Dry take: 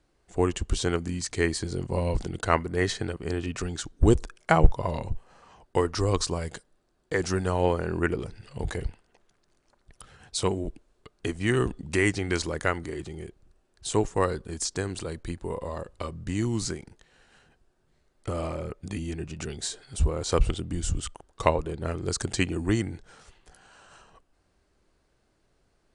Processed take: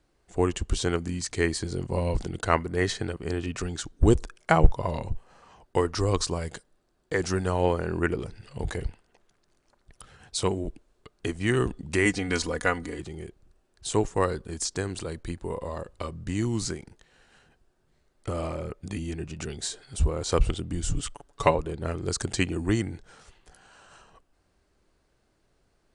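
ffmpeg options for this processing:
-filter_complex "[0:a]asettb=1/sr,asplit=3[s0][s1][s2];[s0]atrim=end=12.054[s3];[s1]atrim=start=12.05:end=12.99,asetpts=PTS-STARTPTS,afade=t=in:d=0.004:c=qsin,afade=t=out:st=0.936:d=0.004:c=qsin,aecho=1:1:4.1:0.65,atrim=end_sample=41454[s4];[s2]atrim=start=12.986[s5];[s3][s4]acrossfade=d=0.004:c1=hsin:c2=qsin[s6];[s6][s5]acrossfade=d=0.004:c1=qsin:c2=hsin,asettb=1/sr,asplit=3[s7][s8][s9];[s7]atrim=end=20.894[s10];[s8]atrim=start=20.89:end=21.55,asetpts=PTS-STARTPTS,afade=t=in:d=0.004:c=qsin,afade=t=out:st=0.656:d=0.004:c=qsin,aecho=1:1:7:0.67,atrim=end_sample=29106[s11];[s9]atrim=start=21.546[s12];[s10][s11]acrossfade=d=0.004:c1=hsin:c2=qsin[s13];[s13][s12]acrossfade=d=0.004:c1=qsin:c2=hsin"

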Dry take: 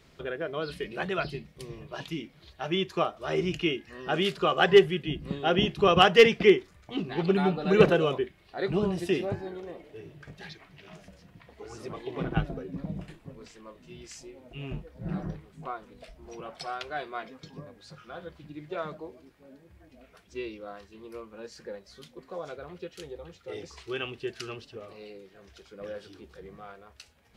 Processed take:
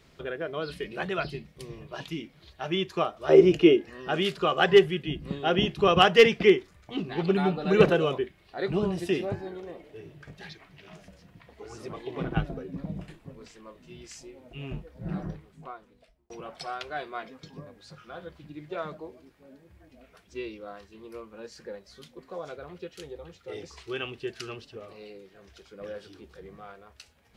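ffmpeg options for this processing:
-filter_complex "[0:a]asettb=1/sr,asplit=3[s0][s1][s2];[s0]atrim=end=3.294[s3];[s1]atrim=start=3.29:end=3.9,asetpts=PTS-STARTPTS,afade=t=in:d=0.004:c=qsin,afade=t=out:st=0.606:d=0.004:c=qsin,equalizer=f=450:w=0.8:g=14.5[s4];[s2]atrim=start=3.896[s5];[s3][s4]acrossfade=d=0.004:c1=hsin:c2=qsin[s6];[s6][s5]acrossfade=d=0.004:c1=qsin:c2=hsin,asplit=2[s7][s8];[s7]atrim=end=16.3,asetpts=PTS-STARTPTS,afade=t=out:st=15.23:d=1.07[s9];[s8]atrim=start=16.3,asetpts=PTS-STARTPTS,afade=t=in:d=0.004:c=hsin[s10];[s9][s10]concat=n=2:v=0:a=1"

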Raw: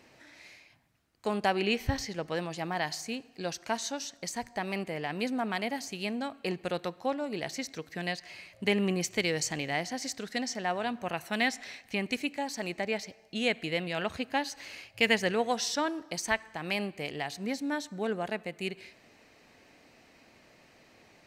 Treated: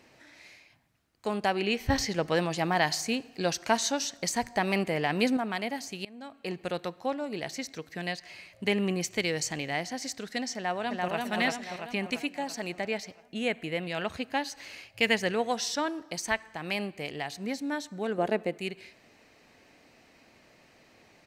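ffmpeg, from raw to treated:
-filter_complex "[0:a]asettb=1/sr,asplit=3[s0][s1][s2];[s0]atrim=end=1.904[s3];[s1]atrim=start=1.9:end=5.37,asetpts=PTS-STARTPTS,afade=t=in:d=0.004:c=qsin,afade=t=out:st=3.466:d=0.004:c=qsin,acontrast=64[s4];[s2]atrim=start=5.366[s5];[s3][s4]acrossfade=d=0.004:c1=hsin:c2=qsin[s6];[s6][s5]acrossfade=d=0.004:c1=qsin:c2=hsin,asplit=2[s7][s8];[s8]afade=t=in:st=10.56:d=0.01,afade=t=out:st=11.18:d=0.01,aecho=0:1:340|680|1020|1360|1700|2040|2380|2720:0.841395|0.462767|0.254522|0.139987|0.0769929|0.0423461|0.0232904|0.0128097[s9];[s7][s9]amix=inputs=2:normalize=0,asettb=1/sr,asplit=3[s10][s11][s12];[s10]atrim=end=13.224[s13];[s11]atrim=start=13.22:end=13.83,asetpts=PTS-STARTPTS,afade=t=in:d=0.004:c=qsin,afade=t=out:st=0.606:d=0.004:c=qsin,equalizer=f=4500:w=1.2:g=-8[s14];[s12]atrim=start=13.826[s15];[s13][s14]acrossfade=d=0.004:c1=hsin:c2=qsin[s16];[s16][s15]acrossfade=d=0.004:c1=qsin:c2=hsin,asettb=1/sr,asplit=3[s17][s18][s19];[s17]atrim=end=18.184[s20];[s18]atrim=start=18.18:end=18.58,asetpts=PTS-STARTPTS,afade=t=in:d=0.004:c=qsin,afade=t=out:st=0.396:d=0.004:c=qsin,equalizer=f=380:w=0.64:g=10[s21];[s19]atrim=start=18.576[s22];[s20][s21]acrossfade=d=0.004:c1=hsin:c2=qsin[s23];[s23][s22]acrossfade=d=0.004:c1=qsin:c2=hsin,asplit=2[s24][s25];[s24]atrim=end=6.05,asetpts=PTS-STARTPTS,afade=t=out:st=6.046:d=0.004:c=hsin:silence=0.0707946[s26];[s25]atrim=start=6.05,asetpts=PTS-STARTPTS,afade=t=in:d=0.58:silence=0.0707946[s27];[s26][s27]concat=n=2:v=0:a=1"

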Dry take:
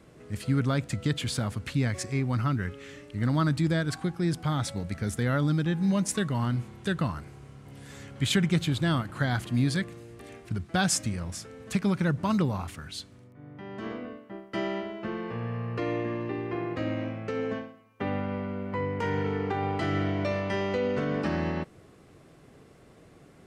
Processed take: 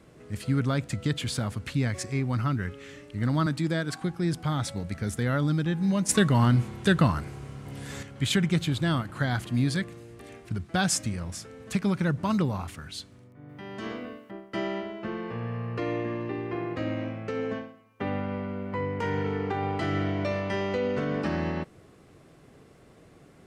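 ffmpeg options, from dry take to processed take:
-filter_complex "[0:a]asettb=1/sr,asplit=3[s0][s1][s2];[s0]atrim=end=3.464[s3];[s1]atrim=start=3.46:end=4.02,asetpts=PTS-STARTPTS,afade=t=in:d=0.004:c=qsin,afade=t=out:st=0.556:d=0.004:c=qsin,highpass=160[s4];[s2]atrim=start=4.016[s5];[s3][s4]acrossfade=d=0.004:c1=hsin:c2=qsin[s6];[s6][s5]acrossfade=d=0.004:c1=qsin:c2=hsin,asettb=1/sr,asplit=3[s7][s8][s9];[s7]atrim=end=6.094[s10];[s8]atrim=start=6.09:end=8.03,asetpts=PTS-STARTPTS,afade=t=in:d=0.004:c=qsin,afade=t=out:st=1.936:d=0.004:c=qsin,acontrast=82[s11];[s9]atrim=start=8.026[s12];[s10][s11]acrossfade=d=0.004:c1=hsin:c2=qsin[s13];[s13][s12]acrossfade=d=0.004:c1=qsin:c2=hsin,asettb=1/sr,asplit=3[s14][s15][s16];[s14]atrim=end=13.494[s17];[s15]atrim=start=13.49:end=14.31,asetpts=PTS-STARTPTS,afade=t=in:d=0.004:c=qsin,afade=t=out:st=0.816:d=0.004:c=qsin,highshelf=f=2900:g=10.5[s18];[s16]atrim=start=14.306[s19];[s17][s18]acrossfade=d=0.004:c1=hsin:c2=qsin[s20];[s20][s19]acrossfade=d=0.004:c1=qsin:c2=hsin"

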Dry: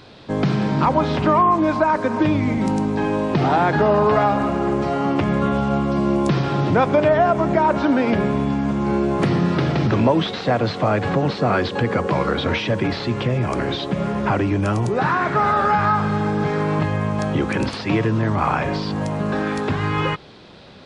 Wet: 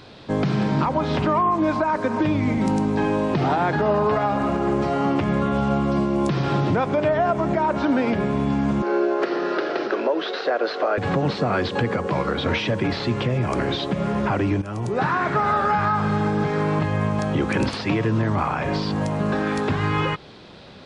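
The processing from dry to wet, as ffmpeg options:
-filter_complex "[0:a]asettb=1/sr,asplit=3[s0][s1][s2];[s0]atrim=end=8.824[s3];[s1]atrim=start=8.82:end=10.98,asetpts=PTS-STARTPTS,afade=t=in:d=0.004:c=qsin,afade=t=out:st=2.156:d=0.004:c=qsin,highpass=f=360:w=0.5412,highpass=f=360:w=1.3066,equalizer=f=380:t=q:w=4:g=6,equalizer=f=580:t=q:w=4:g=3,equalizer=f=930:t=q:w=4:g=-4,equalizer=f=1500:t=q:w=4:g=6,equalizer=f=2200:t=q:w=4:g=-4,equalizer=f=3400:t=q:w=4:g=-4,lowpass=f=5500:w=0.5412,lowpass=f=5500:w=1.3066[s4];[s2]atrim=start=10.976[s5];[s3][s4]acrossfade=d=0.004:c1=hsin:c2=qsin[s6];[s6][s5]acrossfade=d=0.004:c1=qsin:c2=hsin,asplit=2[s7][s8];[s7]atrim=end=14.62,asetpts=PTS-STARTPTS,afade=t=out:st=14.616:d=0.004:c=hsin:silence=0.16788[s9];[s8]atrim=start=14.62,asetpts=PTS-STARTPTS,afade=t=in:d=0.5:silence=0.16788[s10];[s9][s10]concat=n=2:v=0:a=1,alimiter=limit=0.251:level=0:latency=1:release=211"

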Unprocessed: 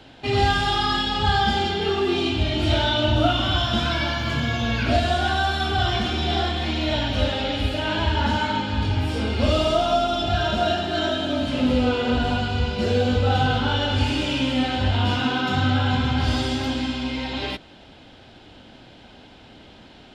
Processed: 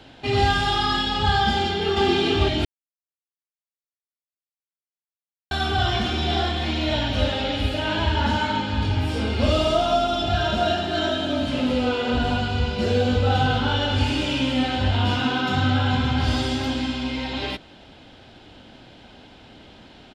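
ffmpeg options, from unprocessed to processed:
-filter_complex "[0:a]asplit=2[s0][s1];[s1]afade=t=in:st=1.52:d=0.01,afade=t=out:st=2.04:d=0.01,aecho=0:1:440|880|1320|1760:0.891251|0.267375|0.0802126|0.0240638[s2];[s0][s2]amix=inputs=2:normalize=0,asettb=1/sr,asplit=3[s3][s4][s5];[s3]atrim=end=11.604[s6];[s4]atrim=start=11.6:end=12.14,asetpts=PTS-STARTPTS,afade=t=in:d=0.004:c=qsin,afade=t=out:st=0.536:d=0.004:c=qsin,lowshelf=f=180:g=-7.5[s7];[s5]atrim=start=12.136[s8];[s6][s7]acrossfade=d=0.004:c1=hsin:c2=qsin[s9];[s9][s8]acrossfade=d=0.004:c1=qsin:c2=hsin,asplit=3[s10][s11][s12];[s10]atrim=end=2.65,asetpts=PTS-STARTPTS,afade=t=out:st=2.646:d=0.004:c=hsin[s13];[s11]atrim=start=2.65:end=5.51,asetpts=PTS-STARTPTS,volume=0[s14];[s12]atrim=start=5.51,asetpts=PTS-STARTPTS,afade=t=in:d=0.004:c=hsin[s15];[s13][s14][s15]concat=n=3:v=0:a=1"

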